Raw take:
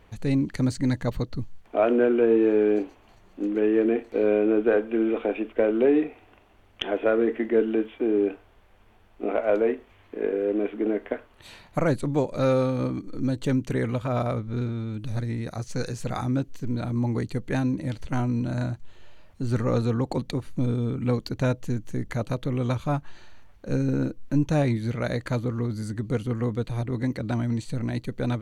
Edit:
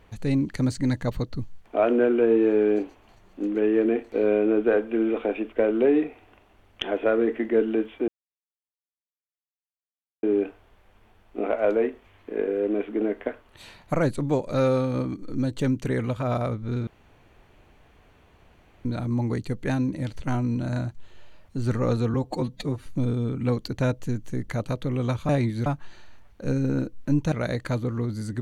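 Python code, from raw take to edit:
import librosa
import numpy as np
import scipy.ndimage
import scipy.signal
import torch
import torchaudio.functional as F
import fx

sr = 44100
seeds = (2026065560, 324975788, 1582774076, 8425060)

y = fx.edit(x, sr, fx.insert_silence(at_s=8.08, length_s=2.15),
    fx.room_tone_fill(start_s=14.72, length_s=1.98),
    fx.stretch_span(start_s=19.99, length_s=0.48, factor=1.5),
    fx.move(start_s=24.56, length_s=0.37, to_s=22.9), tone=tone)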